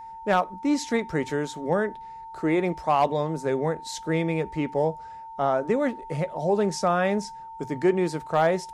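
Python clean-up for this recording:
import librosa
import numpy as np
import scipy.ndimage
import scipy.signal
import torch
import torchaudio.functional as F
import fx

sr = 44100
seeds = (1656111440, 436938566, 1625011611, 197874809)

y = fx.fix_declip(x, sr, threshold_db=-12.5)
y = fx.notch(y, sr, hz=900.0, q=30.0)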